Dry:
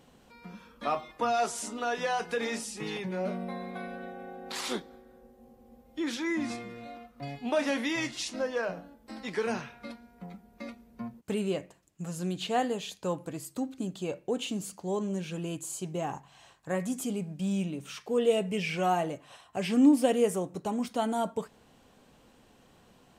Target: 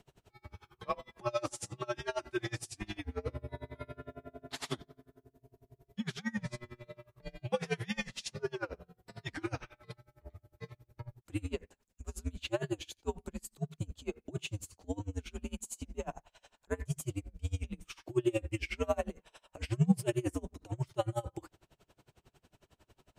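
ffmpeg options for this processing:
ffmpeg -i in.wav -af "afreqshift=-110,aeval=exprs='val(0)*pow(10,-29*(0.5-0.5*cos(2*PI*11*n/s))/20)':channel_layout=same" out.wav

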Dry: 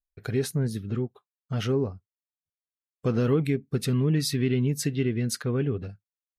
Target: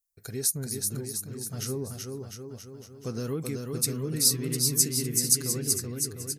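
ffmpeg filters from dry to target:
ffmpeg -i in.wav -af "aecho=1:1:380|703|977.6|1211|1409:0.631|0.398|0.251|0.158|0.1,aexciter=amount=12.8:drive=2:freq=4700,volume=-9dB" out.wav

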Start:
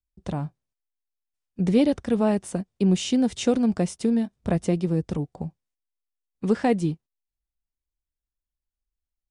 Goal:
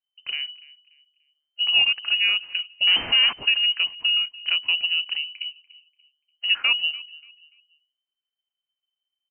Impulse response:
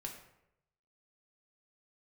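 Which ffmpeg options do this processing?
-filter_complex "[0:a]asettb=1/sr,asplit=3[link_01][link_02][link_03];[link_01]atrim=end=2.874[link_04];[link_02]atrim=start=2.87:end=3.33,asetpts=PTS-STARTPTS,afade=type=in:duration=0.004:curve=qsin,afade=type=out:start_time=0.456:duration=0.004:curve=qsin,asplit=2[link_05][link_06];[link_06]highpass=frequency=720:poles=1,volume=40dB,asoftclip=type=tanh:threshold=-11.5dB[link_07];[link_05][link_07]amix=inputs=2:normalize=0,lowpass=frequency=1100:poles=1,volume=-6dB[link_08];[link_03]atrim=start=3.326[link_09];[link_04][link_08]acrossfade=duration=0.004:curve1=hsin:curve2=qsin[link_10];[link_10][link_09]acrossfade=duration=0.004:curve1=qsin:curve2=hsin,bandreject=frequency=50:width_type=h:width=6,bandreject=frequency=100:width_type=h:width=6,bandreject=frequency=150:width_type=h:width=6,asplit=2[link_11][link_12];[link_12]adelay=291,lowpass=frequency=1100:poles=1,volume=-19.5dB,asplit=2[link_13][link_14];[link_14]adelay=291,lowpass=frequency=1100:poles=1,volume=0.34,asplit=2[link_15][link_16];[link_16]adelay=291,lowpass=frequency=1100:poles=1,volume=0.34[link_17];[link_11][link_13][link_15][link_17]amix=inputs=4:normalize=0,lowpass=frequency=2600:width_type=q:width=0.5098,lowpass=frequency=2600:width_type=q:width=0.6013,lowpass=frequency=2600:width_type=q:width=0.9,lowpass=frequency=2600:width_type=q:width=2.563,afreqshift=-3100"

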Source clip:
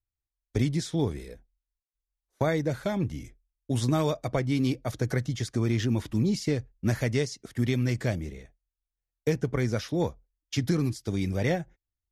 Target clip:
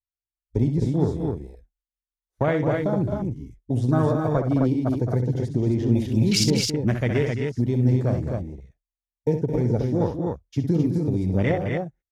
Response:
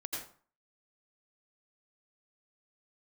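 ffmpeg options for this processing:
-filter_complex "[0:a]asettb=1/sr,asplit=3[link_01][link_02][link_03];[link_01]atrim=end=5.954[link_04];[link_02]atrim=start=5.95:end=6.44,asetpts=PTS-STARTPTS,afade=type=in:duration=0.004:curve=qsin,afade=type=out:start_time=0.486:duration=0.004:curve=qsin,highshelf=frequency=1800:width_type=q:width=3:gain=10.5[link_05];[link_03]atrim=start=6.436[link_06];[link_04][link_05]acrossfade=duration=0.004:curve1=hsin:curve2=qsin[link_07];[link_07][link_06]acrossfade=duration=0.004:curve1=qsin:curve2=hsin,afwtdn=0.0224,aecho=1:1:64.14|215.7|262.4:0.398|0.355|0.631,volume=3.5dB"

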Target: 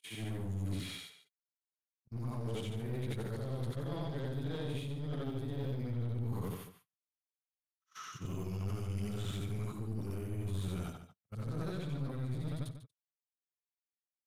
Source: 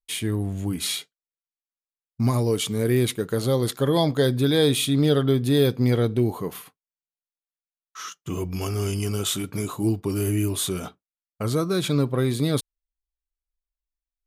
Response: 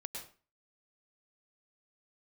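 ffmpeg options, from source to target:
-filter_complex "[0:a]afftfilt=real='re':imag='-im':win_size=8192:overlap=0.75,highpass=frequency=87:width=0.5412,highpass=frequency=87:width=1.3066,agate=range=-25dB:threshold=-45dB:ratio=16:detection=peak,acrossover=split=2800[link_01][link_02];[link_02]acompressor=threshold=-47dB:ratio=4:attack=1:release=60[link_03];[link_01][link_03]amix=inputs=2:normalize=0,asubboost=boost=5:cutoff=140,areverse,acompressor=threshold=-28dB:ratio=16,areverse,aeval=exprs='clip(val(0),-1,0.015)':channel_layout=same,asplit=2[link_04][link_05];[link_05]adelay=145.8,volume=-11dB,highshelf=frequency=4000:gain=-3.28[link_06];[link_04][link_06]amix=inputs=2:normalize=0,volume=-4dB"

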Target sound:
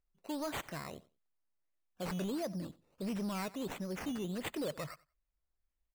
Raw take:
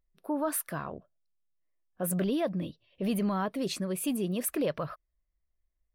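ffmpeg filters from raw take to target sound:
ffmpeg -i in.wav -af "acrusher=samples=11:mix=1:aa=0.000001:lfo=1:lforange=6.6:lforate=1.5,aecho=1:1:92|184:0.0794|0.0135,asoftclip=type=tanh:threshold=-25dB,volume=-6dB" out.wav

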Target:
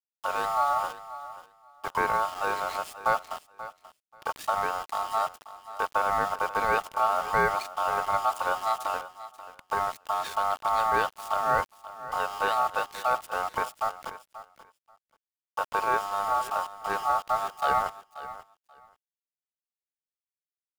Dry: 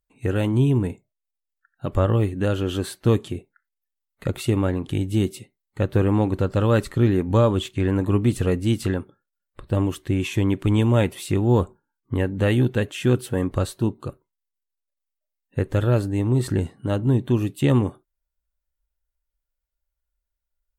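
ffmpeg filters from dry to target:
ffmpeg -i in.wav -af "aeval=exprs='val(0)*sin(2*PI*1000*n/s)':channel_layout=same,aeval=exprs='val(0)*gte(abs(val(0)),0.0237)':channel_layout=same,aecho=1:1:534|1068:0.178|0.0302,volume=-4dB" out.wav

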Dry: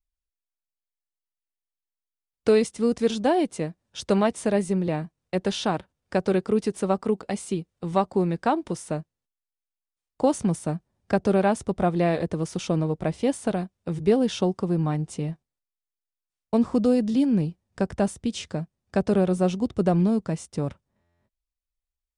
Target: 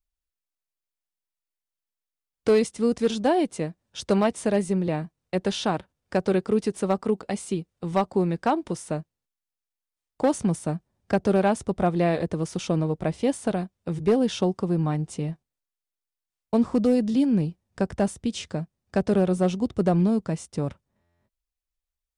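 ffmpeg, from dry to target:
ffmpeg -i in.wav -af "volume=13.5dB,asoftclip=hard,volume=-13.5dB" out.wav

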